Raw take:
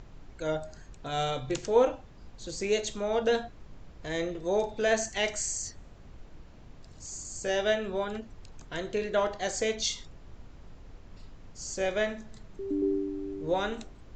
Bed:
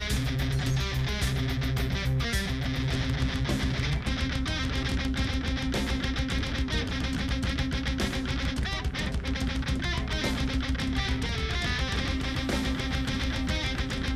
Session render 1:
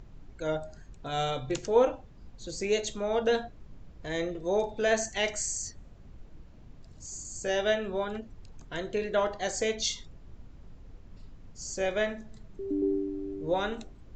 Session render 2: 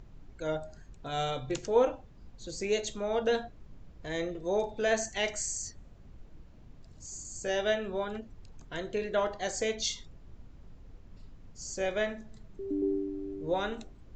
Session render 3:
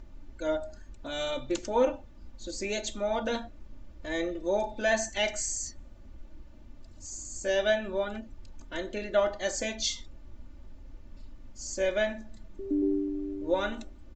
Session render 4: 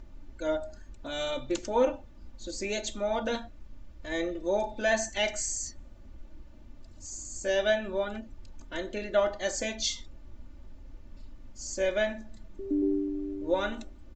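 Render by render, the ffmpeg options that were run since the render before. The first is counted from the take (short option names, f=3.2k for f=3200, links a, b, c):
-af "afftdn=nr=6:nf=-50"
-af "volume=-2dB"
-af "aecho=1:1:3.4:0.81"
-filter_complex "[0:a]asettb=1/sr,asplit=3[a][b][c];[a]atrim=end=3.354[d];[b]atrim=start=3.35:end=4.12,asetpts=PTS-STARTPTS,afade=t=in:d=0.004:c=qsin,afade=t=out:st=0.766:d=0.004:c=qsin,equalizer=f=400:t=o:w=2.4:g=-3.5[e];[c]atrim=start=4.116[f];[d][e]acrossfade=d=0.004:c1=hsin:c2=qsin[g];[g][f]acrossfade=d=0.004:c1=qsin:c2=hsin"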